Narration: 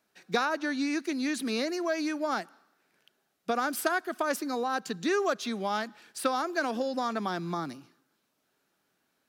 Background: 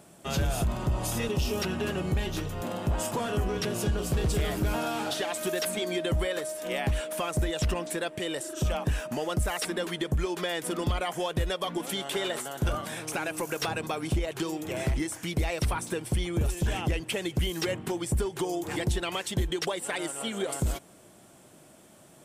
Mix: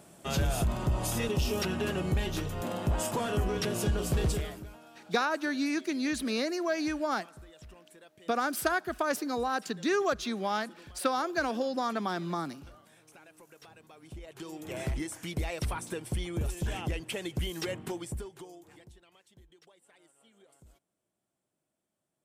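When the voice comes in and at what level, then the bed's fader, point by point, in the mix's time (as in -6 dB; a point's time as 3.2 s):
4.80 s, -0.5 dB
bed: 4.29 s -1 dB
4.79 s -23.5 dB
13.88 s -23.5 dB
14.73 s -5 dB
17.92 s -5 dB
19.05 s -30.5 dB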